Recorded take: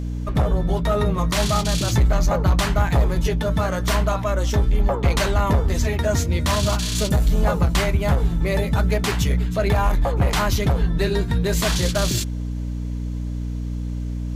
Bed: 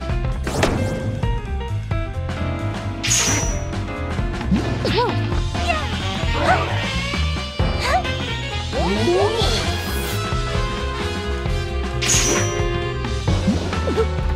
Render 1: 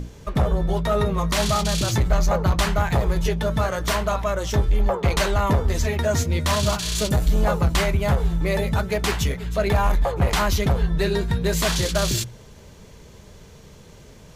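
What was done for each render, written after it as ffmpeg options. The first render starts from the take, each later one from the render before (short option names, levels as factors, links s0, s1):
-af "bandreject=f=60:t=h:w=6,bandreject=f=120:t=h:w=6,bandreject=f=180:t=h:w=6,bandreject=f=240:t=h:w=6,bandreject=f=300:t=h:w=6"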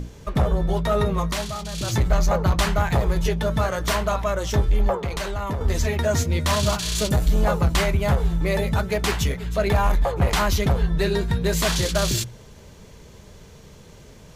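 -filter_complex "[0:a]asettb=1/sr,asplit=3[s0][s1][s2];[s0]atrim=end=4.984[s3];[s1]atrim=start=4.98:end=5.61,asetpts=PTS-STARTPTS,afade=t=in:d=0.004:c=qsin,afade=t=out:st=0.626:d=0.004:c=qsin,acompressor=threshold=0.0447:ratio=2.5:attack=3.2:release=140:knee=1:detection=peak[s4];[s2]atrim=start=5.606[s5];[s3][s4]acrossfade=d=0.004:c1=hsin:c2=qsin[s6];[s6][s5]acrossfade=d=0.004:c1=qsin:c2=hsin,asplit=3[s7][s8][s9];[s7]atrim=end=1.47,asetpts=PTS-STARTPTS,afade=t=out:st=1.19:d=0.28:silence=0.334965[s10];[s8]atrim=start=1.47:end=1.72,asetpts=PTS-STARTPTS,volume=0.335[s11];[s9]atrim=start=1.72,asetpts=PTS-STARTPTS,afade=t=in:d=0.28:silence=0.334965[s12];[s10][s11][s12]concat=n=3:v=0:a=1"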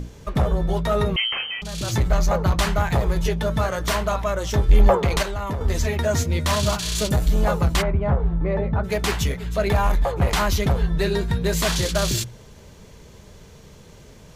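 -filter_complex "[0:a]asettb=1/sr,asplit=3[s0][s1][s2];[s0]atrim=end=1.164[s3];[s1]atrim=start=1.16:end=1.62,asetpts=PTS-STARTPTS,afade=t=in:d=0.004:c=qsin,afade=t=out:st=0.456:d=0.004:c=qsin,lowpass=f=2700:t=q:w=0.5098,lowpass=f=2700:t=q:w=0.6013,lowpass=f=2700:t=q:w=0.9,lowpass=f=2700:t=q:w=2.563,afreqshift=-3200[s4];[s2]atrim=start=1.616[s5];[s3][s4]acrossfade=d=0.004:c1=hsin:c2=qsin[s6];[s6][s5]acrossfade=d=0.004:c1=qsin:c2=hsin,asettb=1/sr,asplit=3[s7][s8][s9];[s7]atrim=end=4.694[s10];[s8]atrim=start=4.69:end=5.23,asetpts=PTS-STARTPTS,afade=t=in:d=0.004:c=qsin,afade=t=out:st=0.536:d=0.004:c=qsin,acontrast=72[s11];[s9]atrim=start=5.226[s12];[s10][s11]acrossfade=d=0.004:c1=hsin:c2=qsin[s13];[s13][s12]acrossfade=d=0.004:c1=qsin:c2=hsin,asplit=3[s14][s15][s16];[s14]afade=t=out:st=7.81:d=0.02[s17];[s15]lowpass=1300,afade=t=in:st=7.81:d=0.02,afade=t=out:st=8.83:d=0.02[s18];[s16]afade=t=in:st=8.83:d=0.02[s19];[s17][s18][s19]amix=inputs=3:normalize=0"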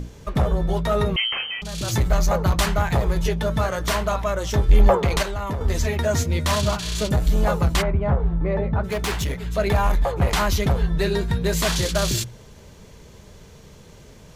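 -filter_complex "[0:a]asettb=1/sr,asplit=3[s0][s1][s2];[s0]atrim=end=1.884[s3];[s1]atrim=start=1.88:end=2.66,asetpts=PTS-STARTPTS,afade=t=in:d=0.004:c=qsin,afade=t=out:st=0.776:d=0.004:c=qsin,highshelf=f=7600:g=5.5[s4];[s2]atrim=start=2.656[s5];[s3][s4]acrossfade=d=0.004:c1=hsin:c2=qsin[s6];[s6][s5]acrossfade=d=0.004:c1=qsin:c2=hsin,asettb=1/sr,asplit=3[s7][s8][s9];[s7]atrim=end=6.614[s10];[s8]atrim=start=6.61:end=7.25,asetpts=PTS-STARTPTS,afade=t=in:d=0.004:c=qsin,afade=t=out:st=0.636:d=0.004:c=qsin,highshelf=f=5100:g=-7[s11];[s9]atrim=start=7.246[s12];[s10][s11]acrossfade=d=0.004:c1=hsin:c2=qsin[s13];[s13][s12]acrossfade=d=0.004:c1=qsin:c2=hsin,asettb=1/sr,asplit=3[s14][s15][s16];[s14]atrim=end=8.814[s17];[s15]atrim=start=8.81:end=9.45,asetpts=PTS-STARTPTS,afade=t=in:d=0.004:c=qsin,afade=t=out:st=0.636:d=0.004:c=qsin,volume=10.6,asoftclip=hard,volume=0.0944[s18];[s16]atrim=start=9.446[s19];[s17][s18]acrossfade=d=0.004:c1=hsin:c2=qsin[s20];[s20][s19]acrossfade=d=0.004:c1=qsin:c2=hsin"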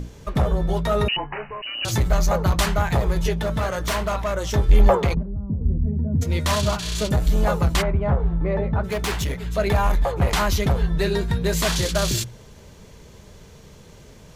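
-filter_complex "[0:a]asettb=1/sr,asplit=3[s0][s1][s2];[s0]atrim=end=1.084[s3];[s1]atrim=start=1.08:end=1.85,asetpts=PTS-STARTPTS,afade=t=in:d=0.004:c=qsin,afade=t=out:st=0.766:d=0.004:c=qsin,lowpass=f=2600:t=q:w=0.5098,lowpass=f=2600:t=q:w=0.6013,lowpass=f=2600:t=q:w=0.9,lowpass=f=2600:t=q:w=2.563,afreqshift=-3000[s4];[s2]atrim=start=1.846[s5];[s3][s4]acrossfade=d=0.004:c1=hsin:c2=qsin[s6];[s6][s5]acrossfade=d=0.004:c1=qsin:c2=hsin,asettb=1/sr,asplit=3[s7][s8][s9];[s7]atrim=end=3.354[s10];[s8]atrim=start=3.35:end=4.35,asetpts=PTS-STARTPTS,afade=t=in:d=0.004:c=qsin,afade=t=out:st=0.996:d=0.004:c=qsin,asoftclip=type=hard:threshold=0.112[s11];[s9]atrim=start=4.346[s12];[s10][s11]acrossfade=d=0.004:c1=hsin:c2=qsin[s13];[s13][s12]acrossfade=d=0.004:c1=qsin:c2=hsin,asplit=3[s14][s15][s16];[s14]afade=t=out:st=5.13:d=0.02[s17];[s15]lowpass=f=200:t=q:w=2,afade=t=in:st=5.13:d=0.02,afade=t=out:st=6.21:d=0.02[s18];[s16]afade=t=in:st=6.21:d=0.02[s19];[s17][s18][s19]amix=inputs=3:normalize=0"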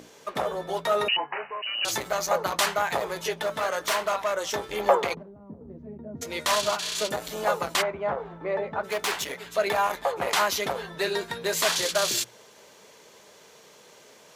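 -af "highpass=480"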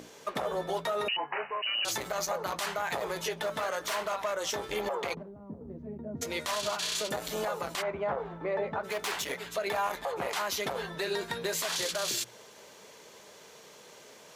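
-af "acompressor=threshold=0.0562:ratio=6,alimiter=limit=0.0794:level=0:latency=1:release=76"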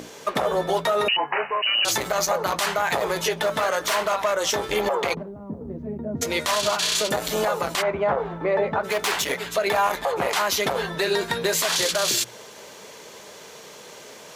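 -af "volume=2.99"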